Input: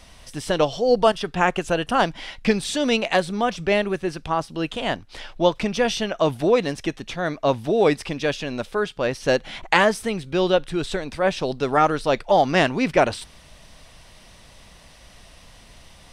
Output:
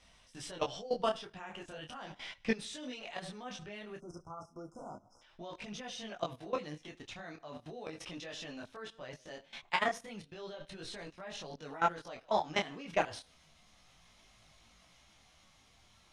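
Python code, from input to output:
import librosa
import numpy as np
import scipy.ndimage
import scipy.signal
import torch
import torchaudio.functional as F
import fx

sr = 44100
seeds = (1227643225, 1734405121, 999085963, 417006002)

p1 = fx.pitch_glide(x, sr, semitones=2.0, runs='starting unshifted')
p2 = scipy.signal.sosfilt(scipy.signal.butter(2, 8100.0, 'lowpass', fs=sr, output='sos'), p1)
p3 = fx.low_shelf(p2, sr, hz=79.0, db=-10.0)
p4 = fx.notch(p3, sr, hz=4500.0, q=18.0)
p5 = p4 + fx.echo_feedback(p4, sr, ms=76, feedback_pct=40, wet_db=-20.5, dry=0)
p6 = fx.spec_erase(p5, sr, start_s=3.98, length_s=1.24, low_hz=1500.0, high_hz=5000.0)
p7 = fx.peak_eq(p6, sr, hz=410.0, db=-4.0, octaves=1.9)
p8 = fx.level_steps(p7, sr, step_db=19)
p9 = fx.detune_double(p8, sr, cents=12)
y = p9 * 10.0 ** (-3.5 / 20.0)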